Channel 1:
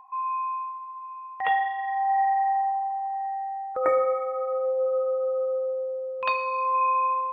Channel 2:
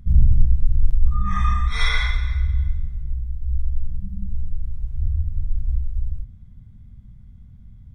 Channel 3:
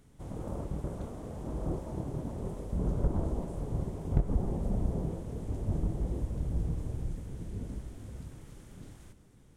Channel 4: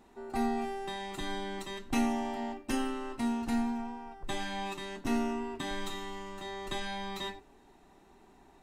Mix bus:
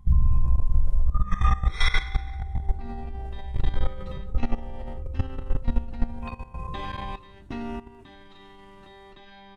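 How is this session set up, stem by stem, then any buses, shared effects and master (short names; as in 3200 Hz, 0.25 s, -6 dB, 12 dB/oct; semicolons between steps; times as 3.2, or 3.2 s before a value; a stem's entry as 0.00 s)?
-13.5 dB, 0.00 s, no send, dry
+1.0 dB, 0.00 s, no send, dry
0.0 dB, 0.00 s, no send, cascading flanger falling 0.39 Hz
+1.0 dB, 2.45 s, no send, LPF 4400 Hz 24 dB/oct; hum 50 Hz, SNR 22 dB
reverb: off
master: level quantiser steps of 16 dB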